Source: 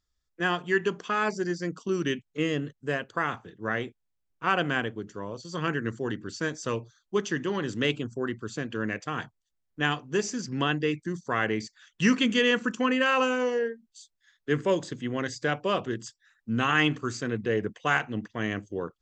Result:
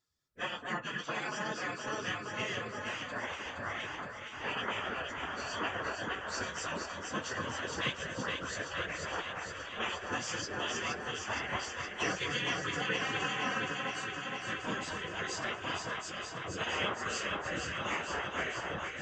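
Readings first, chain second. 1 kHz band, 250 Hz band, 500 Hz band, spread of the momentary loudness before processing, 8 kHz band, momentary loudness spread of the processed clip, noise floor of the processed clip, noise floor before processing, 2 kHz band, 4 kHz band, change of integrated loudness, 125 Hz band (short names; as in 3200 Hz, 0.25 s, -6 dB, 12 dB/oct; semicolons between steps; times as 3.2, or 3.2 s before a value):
-5.5 dB, -14.0 dB, -11.0 dB, 12 LU, -0.5 dB, 5 LU, -44 dBFS, -78 dBFS, -5.0 dB, -3.0 dB, -7.5 dB, -11.0 dB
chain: phase scrambler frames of 50 ms; low shelf 220 Hz +4 dB; compressor 2.5:1, threshold -28 dBFS, peak gain reduction 9.5 dB; echo with dull and thin repeats by turns 0.234 s, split 1600 Hz, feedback 87%, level -4 dB; spectral gate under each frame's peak -10 dB weak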